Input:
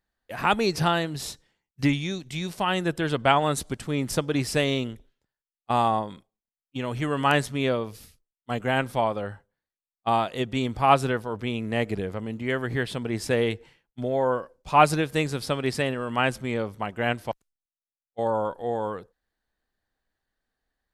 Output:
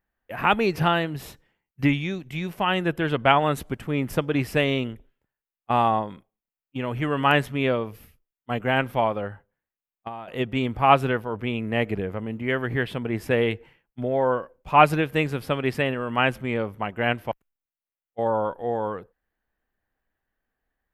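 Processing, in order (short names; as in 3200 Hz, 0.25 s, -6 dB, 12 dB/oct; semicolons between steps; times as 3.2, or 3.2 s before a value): band shelf 6000 Hz -13 dB; 9.27–10.28 compressor 16:1, threshold -34 dBFS, peak gain reduction 16.5 dB; dynamic EQ 3600 Hz, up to +4 dB, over -40 dBFS, Q 0.95; gain +1.5 dB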